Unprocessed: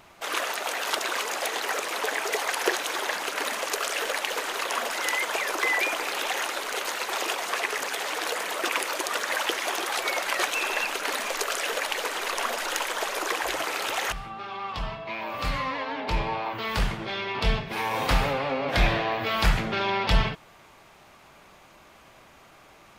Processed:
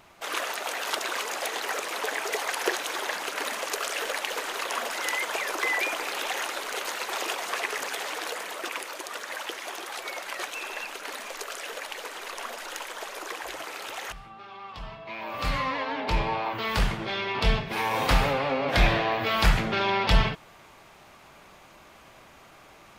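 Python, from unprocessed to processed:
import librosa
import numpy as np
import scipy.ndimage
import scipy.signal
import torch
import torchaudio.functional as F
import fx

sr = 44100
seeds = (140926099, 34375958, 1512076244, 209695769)

y = fx.gain(x, sr, db=fx.line((7.96, -2.0), (8.91, -8.0), (14.8, -8.0), (15.53, 1.0)))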